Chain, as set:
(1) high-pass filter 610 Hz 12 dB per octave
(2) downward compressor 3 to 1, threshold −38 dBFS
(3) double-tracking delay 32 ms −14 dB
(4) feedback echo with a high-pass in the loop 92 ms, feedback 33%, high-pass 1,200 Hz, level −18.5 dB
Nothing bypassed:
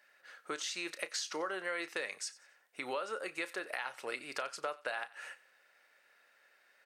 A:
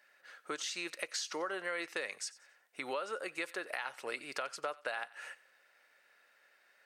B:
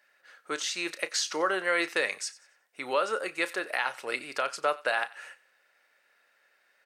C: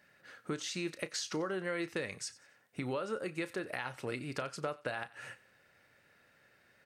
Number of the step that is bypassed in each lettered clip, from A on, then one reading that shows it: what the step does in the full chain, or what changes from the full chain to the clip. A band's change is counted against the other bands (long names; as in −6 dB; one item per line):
3, change in momentary loudness spread −2 LU
2, average gain reduction 7.0 dB
1, 125 Hz band +22.0 dB